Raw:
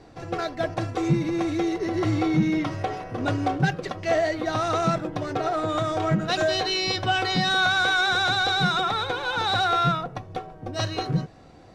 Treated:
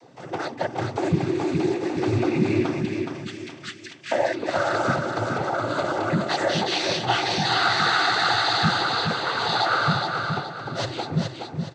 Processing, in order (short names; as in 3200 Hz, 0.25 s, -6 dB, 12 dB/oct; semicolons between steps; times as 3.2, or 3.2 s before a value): 2.82–4.11 steep high-pass 1900 Hz 36 dB/oct; noise vocoder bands 16; on a send: feedback echo 0.42 s, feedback 35%, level -5 dB